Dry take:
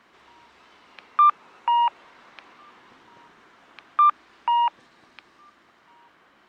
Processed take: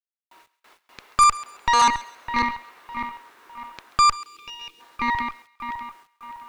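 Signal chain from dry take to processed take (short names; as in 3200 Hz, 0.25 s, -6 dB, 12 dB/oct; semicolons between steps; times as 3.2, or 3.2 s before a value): regenerating reverse delay 0.303 s, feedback 66%, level -7.5 dB; HPF 390 Hz 12 dB/oct; notch 3100 Hz, Q 22; gate with hold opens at -42 dBFS; spectral gain 4.16–4.8, 500–2200 Hz -29 dB; added harmonics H 8 -13 dB, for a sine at -8.5 dBFS; bit-crush 10-bit; on a send: thinning echo 0.135 s, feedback 32%, high-pass 1100 Hz, level -17.5 dB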